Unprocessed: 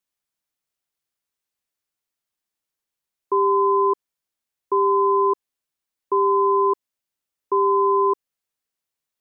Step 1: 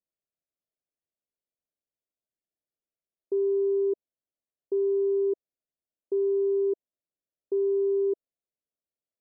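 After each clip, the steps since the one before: elliptic low-pass 660 Hz, stop band 40 dB; low shelf 370 Hz -7 dB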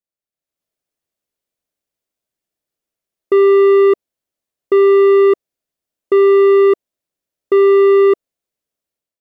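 sample leveller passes 2; AGC gain up to 11.5 dB; gain +3 dB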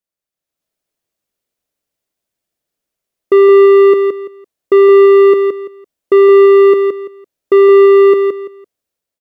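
feedback echo 0.169 s, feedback 24%, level -6 dB; gain +3.5 dB

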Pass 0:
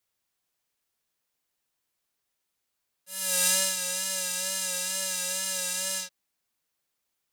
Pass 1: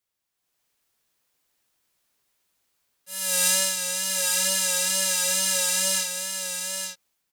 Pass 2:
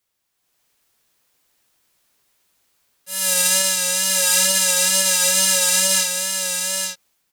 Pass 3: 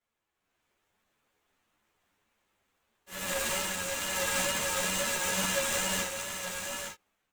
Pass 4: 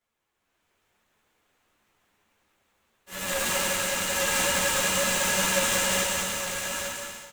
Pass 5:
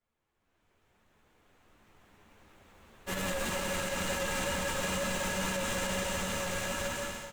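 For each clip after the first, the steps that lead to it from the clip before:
AGC gain up to 10 dB; on a send: echo 0.866 s -6 dB; on the sum: gain -3 dB
limiter -10.5 dBFS, peak gain reduction 5.5 dB; gain +7.5 dB
median filter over 9 samples; ensemble effect
bouncing-ball echo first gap 0.19 s, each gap 0.6×, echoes 5; gain +3.5 dB
recorder AGC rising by 5.7 dB/s; tilt -2 dB/oct; limiter -19 dBFS, peak gain reduction 8.5 dB; gain -4 dB

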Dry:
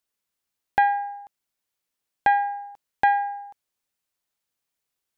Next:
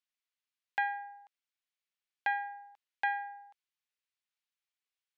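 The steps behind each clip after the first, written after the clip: band-pass 2600 Hz, Q 0.98; gain -5 dB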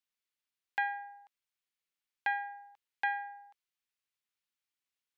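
bell 640 Hz -5.5 dB 0.37 oct

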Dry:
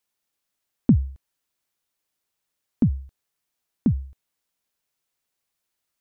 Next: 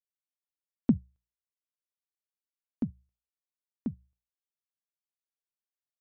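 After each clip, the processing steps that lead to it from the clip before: low shelf 420 Hz -6.5 dB; notches 60/120/180 Hz; upward expander 2.5:1, over -34 dBFS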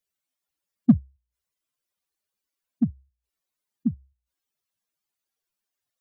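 spectral contrast raised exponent 2.4; in parallel at -9 dB: hard clip -24.5 dBFS, distortion -6 dB; on the sum: gain +7 dB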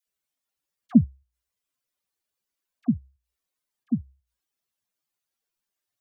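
dispersion lows, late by 70 ms, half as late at 830 Hz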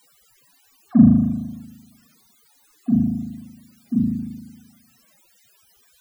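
spring tank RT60 1.2 s, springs 38 ms, chirp 65 ms, DRR -9 dB; requantised 8-bit, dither triangular; loudest bins only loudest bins 64; gain -1.5 dB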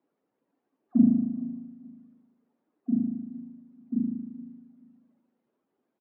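CVSD 32 kbps; ladder band-pass 330 Hz, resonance 40%; feedback echo 0.43 s, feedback 25%, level -17.5 dB; gain +2 dB

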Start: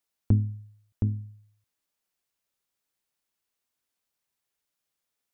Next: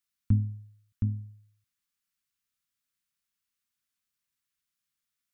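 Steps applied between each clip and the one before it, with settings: band shelf 540 Hz -15 dB; gain -2 dB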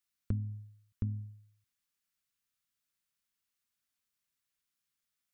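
compressor, threshold -29 dBFS, peak gain reduction 10 dB; gain -1 dB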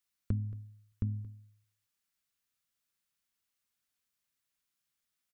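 echo 0.226 s -19 dB; gain +1 dB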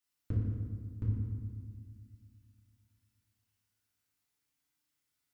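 FDN reverb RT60 1.7 s, low-frequency decay 1.6×, high-frequency decay 0.65×, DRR -7 dB; gain -5.5 dB

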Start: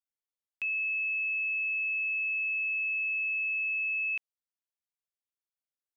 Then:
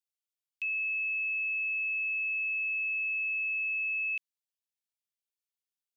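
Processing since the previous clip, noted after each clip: steep high-pass 2300 Hz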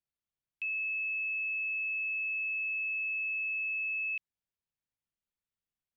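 tone controls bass +12 dB, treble -12 dB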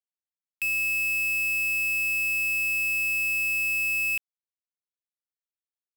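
companded quantiser 2-bit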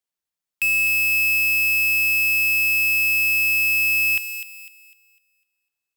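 thin delay 0.251 s, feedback 34%, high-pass 3000 Hz, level -6 dB; gain +7 dB

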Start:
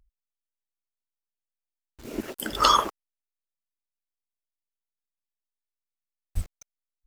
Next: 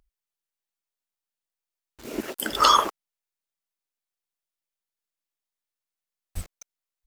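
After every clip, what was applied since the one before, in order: low shelf 190 Hz -10 dB; in parallel at -2 dB: limiter -14 dBFS, peak gain reduction 11 dB; on the sum: gain -1 dB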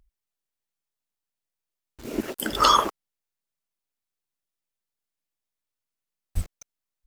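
low shelf 300 Hz +8 dB; gain -1 dB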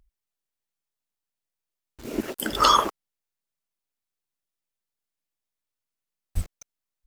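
nothing audible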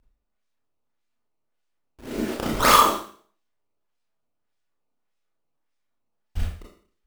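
decimation with a swept rate 15×, swing 160% 1.7 Hz; Schroeder reverb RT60 0.48 s, combs from 26 ms, DRR -4 dB; gain -2.5 dB

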